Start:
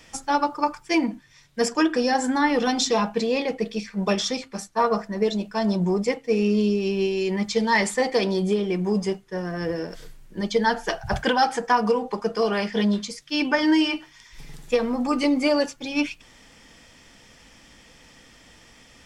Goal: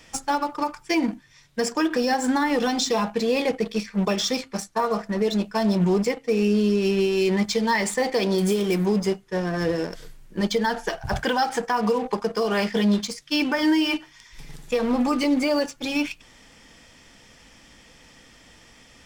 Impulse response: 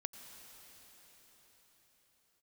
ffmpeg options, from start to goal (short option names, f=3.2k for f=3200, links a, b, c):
-filter_complex "[0:a]asplit=2[a][b];[b]acrusher=bits=4:mix=0:aa=0.5,volume=-6dB[c];[a][c]amix=inputs=2:normalize=0,alimiter=limit=-13.5dB:level=0:latency=1:release=164,asettb=1/sr,asplit=3[d][e][f];[d]atrim=end=8.384[g];[e]atrim=start=8.38:end=8.86,asetpts=PTS-STARTPTS,afade=t=in:d=0.004:c=qsin,afade=t=out:st=0.476:d=0.004:c=qsin,aemphasis=mode=production:type=50fm[h];[f]atrim=start=8.856[i];[g][h]acrossfade=d=0.004:c1=hsin:c2=qsin[j];[j][i]acrossfade=d=0.004:c1=qsin:c2=hsin"